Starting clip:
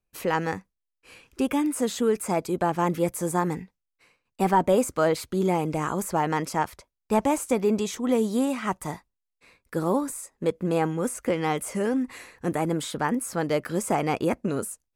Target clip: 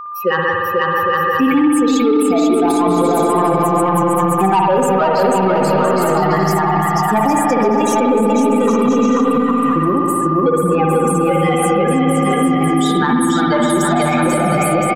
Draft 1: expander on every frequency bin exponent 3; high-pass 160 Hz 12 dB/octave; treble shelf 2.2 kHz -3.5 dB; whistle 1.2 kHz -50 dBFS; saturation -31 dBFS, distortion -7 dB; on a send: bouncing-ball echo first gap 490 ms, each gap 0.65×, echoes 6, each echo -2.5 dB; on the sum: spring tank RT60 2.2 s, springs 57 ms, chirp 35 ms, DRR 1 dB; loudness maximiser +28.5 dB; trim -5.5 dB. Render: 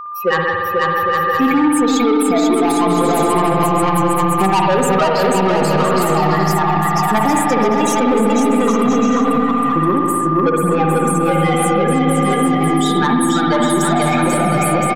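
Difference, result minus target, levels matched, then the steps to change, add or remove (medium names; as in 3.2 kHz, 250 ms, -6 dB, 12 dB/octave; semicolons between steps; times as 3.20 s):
saturation: distortion +9 dB
change: saturation -21.5 dBFS, distortion -16 dB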